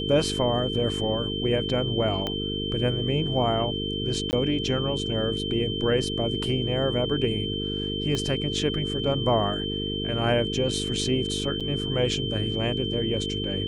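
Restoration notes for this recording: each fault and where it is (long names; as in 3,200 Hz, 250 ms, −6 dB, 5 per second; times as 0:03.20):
mains buzz 50 Hz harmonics 9 −31 dBFS
whistle 3,100 Hz −31 dBFS
0:02.27: click −15 dBFS
0:04.31–0:04.33: drop-out 19 ms
0:08.15: click −15 dBFS
0:11.60–0:11.61: drop-out 6.4 ms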